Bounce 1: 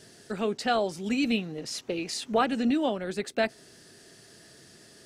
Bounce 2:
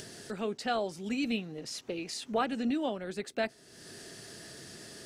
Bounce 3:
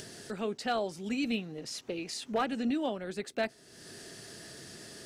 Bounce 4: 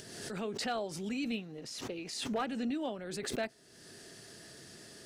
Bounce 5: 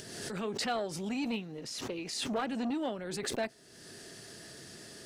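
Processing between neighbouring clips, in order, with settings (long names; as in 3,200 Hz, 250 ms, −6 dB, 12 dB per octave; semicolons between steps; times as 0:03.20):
upward compression, threshold −31 dBFS; level −5.5 dB
gain into a clipping stage and back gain 22 dB
background raised ahead of every attack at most 42 dB per second; level −4.5 dB
saturating transformer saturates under 540 Hz; level +3 dB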